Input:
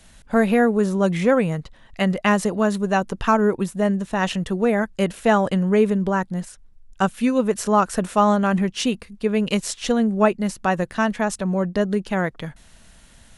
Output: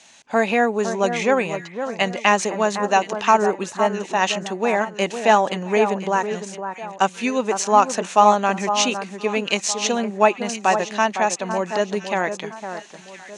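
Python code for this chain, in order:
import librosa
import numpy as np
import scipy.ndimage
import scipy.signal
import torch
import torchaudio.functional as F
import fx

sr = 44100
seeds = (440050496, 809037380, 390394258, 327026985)

p1 = fx.cabinet(x, sr, low_hz=360.0, low_slope=12, high_hz=8000.0, hz=(490.0, 850.0, 1400.0, 2500.0, 4100.0, 6400.0), db=(-4, 5, -4, 6, 3, 9))
p2 = p1 + fx.echo_alternate(p1, sr, ms=508, hz=1700.0, feedback_pct=56, wet_db=-8.5, dry=0)
y = p2 * librosa.db_to_amplitude(2.5)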